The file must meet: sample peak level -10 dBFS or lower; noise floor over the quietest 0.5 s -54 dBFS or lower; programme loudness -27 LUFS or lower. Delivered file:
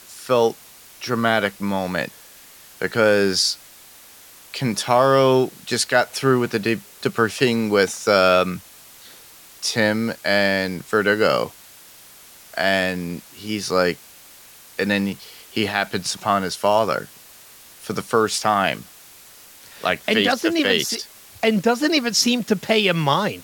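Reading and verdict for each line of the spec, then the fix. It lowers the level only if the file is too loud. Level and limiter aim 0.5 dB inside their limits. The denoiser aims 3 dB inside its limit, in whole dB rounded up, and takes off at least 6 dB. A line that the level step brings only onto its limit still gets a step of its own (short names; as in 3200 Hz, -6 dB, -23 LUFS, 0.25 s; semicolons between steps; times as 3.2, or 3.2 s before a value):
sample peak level -3.0 dBFS: fail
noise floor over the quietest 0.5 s -46 dBFS: fail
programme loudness -20.0 LUFS: fail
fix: denoiser 6 dB, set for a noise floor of -46 dBFS; gain -7.5 dB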